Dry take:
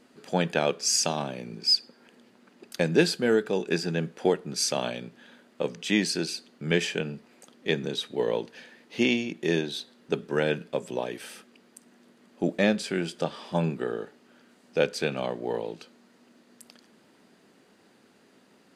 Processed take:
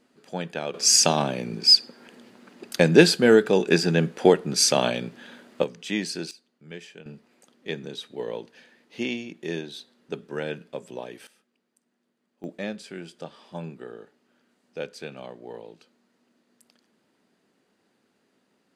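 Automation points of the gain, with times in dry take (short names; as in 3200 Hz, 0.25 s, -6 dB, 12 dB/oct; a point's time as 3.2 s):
-6 dB
from 0.74 s +7 dB
from 5.64 s -3.5 dB
from 6.31 s -16 dB
from 7.06 s -5.5 dB
from 11.27 s -18 dB
from 12.44 s -9.5 dB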